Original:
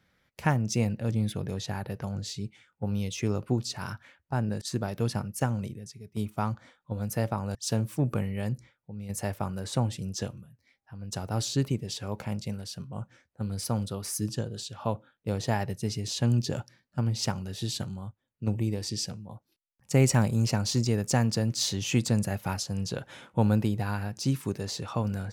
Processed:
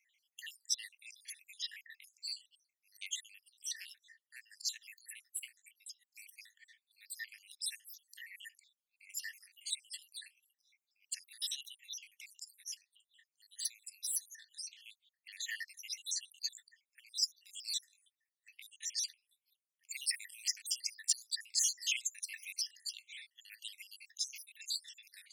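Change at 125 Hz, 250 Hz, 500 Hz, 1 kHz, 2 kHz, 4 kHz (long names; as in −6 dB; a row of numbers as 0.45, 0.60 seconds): below −40 dB, below −40 dB, below −40 dB, below −40 dB, −7.0 dB, −2.5 dB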